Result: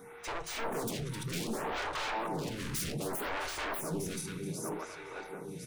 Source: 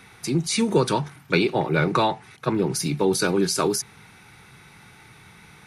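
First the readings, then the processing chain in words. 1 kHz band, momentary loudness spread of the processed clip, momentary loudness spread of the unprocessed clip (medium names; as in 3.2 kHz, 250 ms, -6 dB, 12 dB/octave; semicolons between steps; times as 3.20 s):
-10.5 dB, 7 LU, 6 LU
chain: backward echo that repeats 527 ms, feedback 65%, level -12 dB; peaking EQ 4.6 kHz -10 dB 0.33 oct; whistle 470 Hz -52 dBFS; saturation -19 dBFS, distortion -11 dB; delay 260 ms -13.5 dB; wavefolder -29 dBFS; simulated room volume 180 m³, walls furnished, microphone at 0.41 m; lamp-driven phase shifter 0.65 Hz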